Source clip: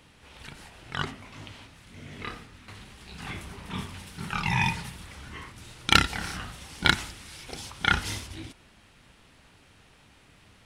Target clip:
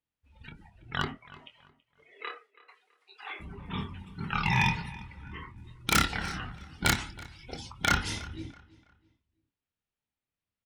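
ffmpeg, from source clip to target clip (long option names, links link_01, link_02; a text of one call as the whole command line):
ffmpeg -i in.wav -filter_complex "[0:a]asettb=1/sr,asplit=3[link_01][link_02][link_03];[link_01]atrim=end=1.154[link_04];[link_02]atrim=start=1.15:end=3.4,asetpts=PTS-STARTPTS,afade=type=in:duration=0.004:curve=qsin,afade=type=out:start_time=2.246:duration=0.004:curve=qsin,highpass=frequency=390:width=0.5412,highpass=frequency=390:width=1.3066[link_05];[link_03]atrim=start=3.396[link_06];[link_04][link_05]acrossfade=duration=0.004:curve1=hsin:curve2=qsin[link_07];[link_07][link_06]acrossfade=duration=0.004:curve1=qsin:curve2=hsin,agate=range=-11dB:threshold=-52dB:ratio=16:detection=peak,afftdn=noise_reduction=27:noise_floor=-42,aeval=exprs='0.188*(abs(mod(val(0)/0.188+3,4)-2)-1)':channel_layout=same,asplit=2[link_08][link_09];[link_09]adelay=25,volume=-10dB[link_10];[link_08][link_10]amix=inputs=2:normalize=0,asplit=2[link_11][link_12];[link_12]adelay=328,lowpass=frequency=4200:poles=1,volume=-19.5dB,asplit=2[link_13][link_14];[link_14]adelay=328,lowpass=frequency=4200:poles=1,volume=0.33,asplit=2[link_15][link_16];[link_16]adelay=328,lowpass=frequency=4200:poles=1,volume=0.33[link_17];[link_11][link_13][link_15][link_17]amix=inputs=4:normalize=0" out.wav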